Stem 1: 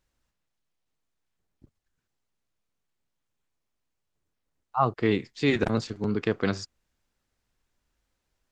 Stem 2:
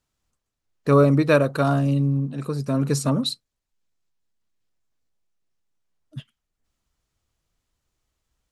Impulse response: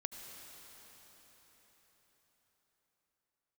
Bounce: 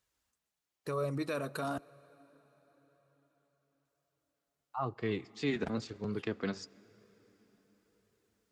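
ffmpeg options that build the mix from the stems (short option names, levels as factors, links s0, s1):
-filter_complex "[0:a]acrossover=split=330[s0][s1];[s1]acompressor=threshold=0.00708:ratio=1.5[s2];[s0][s2]amix=inputs=2:normalize=0,volume=0.944,asplit=3[s3][s4][s5];[s4]volume=0.168[s6];[1:a]highshelf=f=7300:g=9.5,alimiter=limit=0.168:level=0:latency=1:release=29,volume=0.531,asplit=3[s7][s8][s9];[s7]atrim=end=1.78,asetpts=PTS-STARTPTS,afade=t=out:st=1.776:d=0.004:c=hsin[s10];[s8]atrim=start=1.78:end=3.85,asetpts=PTS-STARTPTS,volume=0[s11];[s9]atrim=start=3.85,asetpts=PTS-STARTPTS,afade=t=in:d=0.004:c=hsin[s12];[s10][s11][s12]concat=n=3:v=0:a=1,asplit=2[s13][s14];[s14]volume=0.168[s15];[s5]apad=whole_len=375341[s16];[s13][s16]sidechaincompress=threshold=0.0316:ratio=8:attack=16:release=390[s17];[2:a]atrim=start_sample=2205[s18];[s6][s15]amix=inputs=2:normalize=0[s19];[s19][s18]afir=irnorm=-1:irlink=0[s20];[s3][s17][s20]amix=inputs=3:normalize=0,flanger=delay=1.7:depth=3.1:regen=-48:speed=0.99:shape=sinusoidal,highpass=50,lowshelf=f=320:g=-7"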